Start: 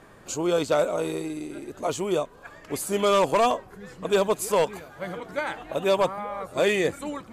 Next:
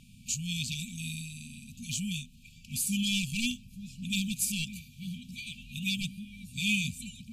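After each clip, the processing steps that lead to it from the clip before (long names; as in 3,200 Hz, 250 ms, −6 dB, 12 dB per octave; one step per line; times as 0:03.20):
brick-wall band-stop 250–2,300 Hz
level +1.5 dB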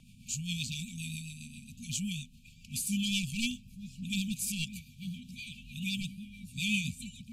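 rotating-speaker cabinet horn 7.5 Hz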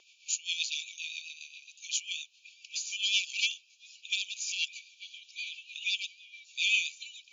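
linear-phase brick-wall band-pass 340–7,200 Hz
level +6 dB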